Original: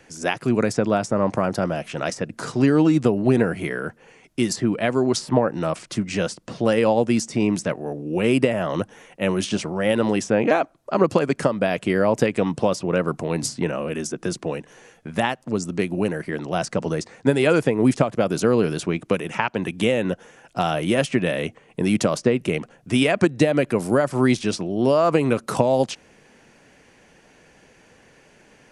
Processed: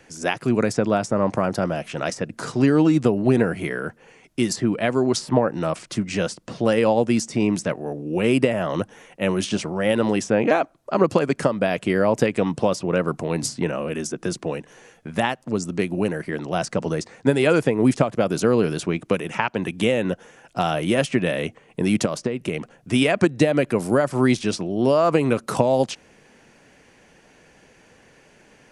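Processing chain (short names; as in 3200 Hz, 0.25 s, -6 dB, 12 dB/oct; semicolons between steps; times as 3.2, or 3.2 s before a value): 22.05–22.59 compressor 10:1, threshold -20 dBFS, peak gain reduction 8 dB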